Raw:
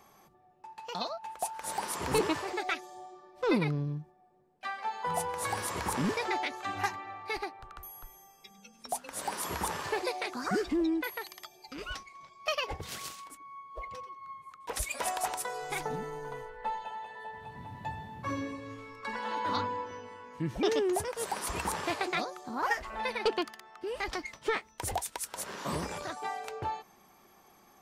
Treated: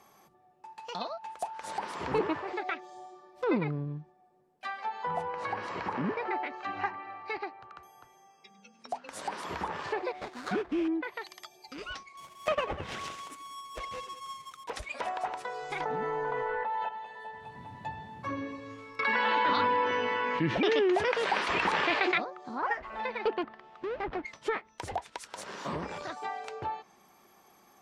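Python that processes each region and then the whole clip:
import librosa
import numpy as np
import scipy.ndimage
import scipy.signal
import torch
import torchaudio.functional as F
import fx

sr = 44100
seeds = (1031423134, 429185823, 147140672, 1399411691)

y = fx.chain(x, sr, fx.bandpass_edges(low_hz=110.0, high_hz=4500.0),
    fx.notch(hz=3500.0, q=9.9), at=(5.28, 9.09))
y = fx.chain(y, sr, fx.sample_hold(seeds[0], rate_hz=2900.0, jitter_pct=20),
    fx.upward_expand(threshold_db=-40.0, expansion=1.5), at=(10.12, 10.88))
y = fx.chain(y, sr, fx.halfwave_hold(),
    fx.peak_eq(hz=4400.0, db=-5.5, octaves=0.32),
    fx.echo_single(ms=195, db=-15.0), at=(12.17, 14.64))
y = fx.chain(y, sr, fx.low_shelf(hz=290.0, db=-10.5),
    fx.env_flatten(amount_pct=100), at=(15.8, 16.89))
y = fx.chain(y, sr, fx.weighting(curve='D'),
    fx.env_flatten(amount_pct=70), at=(18.99, 22.18))
y = fx.chain(y, sr, fx.halfwave_hold(),
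    fx.spacing_loss(db_at_10k=33), at=(23.43, 24.25))
y = fx.env_lowpass_down(y, sr, base_hz=2100.0, full_db=-29.0)
y = fx.low_shelf(y, sr, hz=80.0, db=-10.5)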